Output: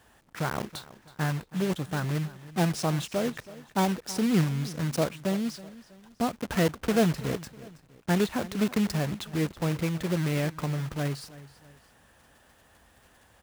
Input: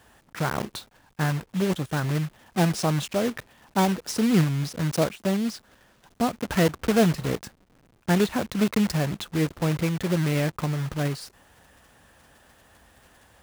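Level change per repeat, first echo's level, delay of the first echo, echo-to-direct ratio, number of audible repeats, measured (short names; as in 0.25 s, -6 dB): -7.5 dB, -18.0 dB, 0.324 s, -17.5 dB, 2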